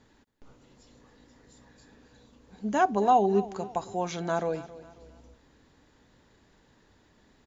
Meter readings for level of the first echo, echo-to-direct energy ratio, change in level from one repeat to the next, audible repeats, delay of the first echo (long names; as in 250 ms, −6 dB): −17.0 dB, −16.5 dB, −8.5 dB, 3, 271 ms